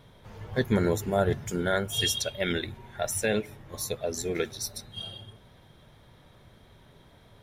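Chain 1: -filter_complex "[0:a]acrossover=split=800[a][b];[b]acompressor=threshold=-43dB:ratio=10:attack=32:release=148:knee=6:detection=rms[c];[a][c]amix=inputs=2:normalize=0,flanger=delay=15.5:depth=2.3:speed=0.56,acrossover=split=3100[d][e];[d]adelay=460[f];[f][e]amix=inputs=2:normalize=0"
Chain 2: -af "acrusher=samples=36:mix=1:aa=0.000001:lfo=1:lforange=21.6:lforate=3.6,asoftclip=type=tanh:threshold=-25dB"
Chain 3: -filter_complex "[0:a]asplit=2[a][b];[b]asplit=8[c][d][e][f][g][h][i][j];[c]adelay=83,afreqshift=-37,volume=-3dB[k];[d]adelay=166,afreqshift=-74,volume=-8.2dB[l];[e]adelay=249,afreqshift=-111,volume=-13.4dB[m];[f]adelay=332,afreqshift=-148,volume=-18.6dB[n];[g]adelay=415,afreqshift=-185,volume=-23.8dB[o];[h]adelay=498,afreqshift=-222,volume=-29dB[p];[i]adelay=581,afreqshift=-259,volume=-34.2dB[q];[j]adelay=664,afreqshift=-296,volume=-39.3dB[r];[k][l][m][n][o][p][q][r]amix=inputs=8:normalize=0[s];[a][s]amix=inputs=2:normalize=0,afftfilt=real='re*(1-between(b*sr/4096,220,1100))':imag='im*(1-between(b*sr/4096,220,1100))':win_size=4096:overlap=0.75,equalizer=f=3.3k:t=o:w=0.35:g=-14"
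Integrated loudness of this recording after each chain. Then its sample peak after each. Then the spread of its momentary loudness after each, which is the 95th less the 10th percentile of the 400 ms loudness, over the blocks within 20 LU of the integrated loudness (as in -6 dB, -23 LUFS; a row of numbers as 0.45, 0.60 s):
-34.5, -34.0, -31.0 LUFS; -16.5, -25.0, -15.0 dBFS; 20, 12, 15 LU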